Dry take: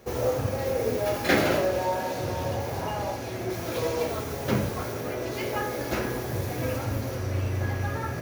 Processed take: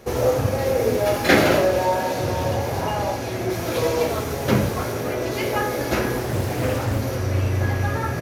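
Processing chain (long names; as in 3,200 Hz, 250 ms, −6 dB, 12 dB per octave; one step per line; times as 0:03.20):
downsampling to 32,000 Hz
0:06.19–0:06.99: highs frequency-modulated by the lows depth 0.53 ms
level +6.5 dB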